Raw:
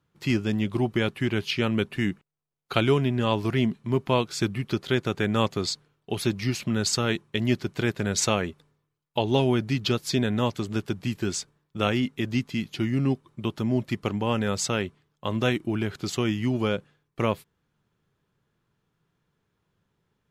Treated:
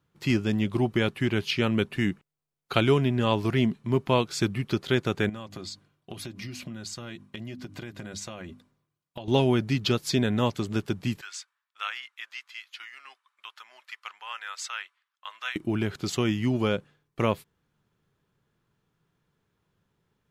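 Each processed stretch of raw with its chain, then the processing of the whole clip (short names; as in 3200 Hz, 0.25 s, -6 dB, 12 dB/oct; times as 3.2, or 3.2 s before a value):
5.29–9.28 notches 50/100/150/200/250/300 Hz + notch comb 440 Hz + compressor 10:1, threshold -34 dBFS
11.21–15.56 HPF 1200 Hz 24 dB/oct + high shelf 3500 Hz -10.5 dB
whole clip: dry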